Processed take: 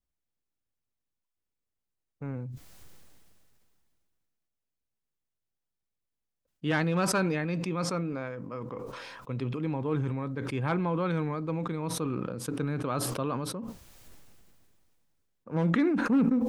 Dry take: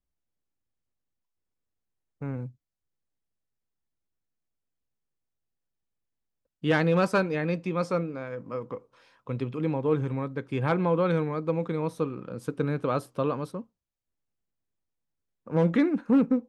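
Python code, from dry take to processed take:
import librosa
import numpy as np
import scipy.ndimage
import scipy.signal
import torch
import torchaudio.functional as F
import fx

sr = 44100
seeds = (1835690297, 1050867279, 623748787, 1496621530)

y = fx.dynamic_eq(x, sr, hz=500.0, q=2.9, threshold_db=-38.0, ratio=4.0, max_db=-6)
y = fx.sustainer(y, sr, db_per_s=23.0)
y = y * librosa.db_to_amplitude(-3.0)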